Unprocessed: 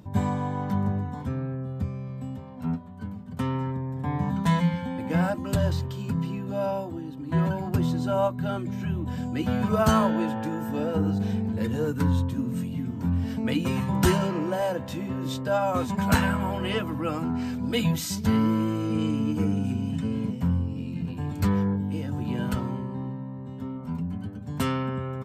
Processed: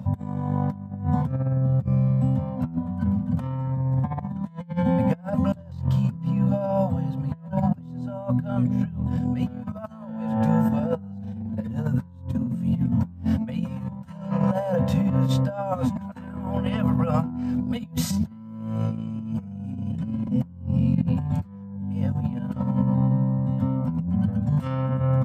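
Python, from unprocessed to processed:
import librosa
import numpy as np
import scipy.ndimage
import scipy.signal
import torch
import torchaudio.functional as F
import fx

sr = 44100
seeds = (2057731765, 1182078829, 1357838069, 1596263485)

y = scipy.signal.sosfilt(scipy.signal.cheby1(4, 1.0, [250.0, 500.0], 'bandstop', fs=sr, output='sos'), x)
y = fx.tilt_shelf(y, sr, db=7.5, hz=970.0)
y = fx.over_compress(y, sr, threshold_db=-27.0, ratio=-0.5)
y = scipy.signal.sosfilt(scipy.signal.butter(2, 86.0, 'highpass', fs=sr, output='sos'), y)
y = F.gain(torch.from_numpy(y), 3.0).numpy()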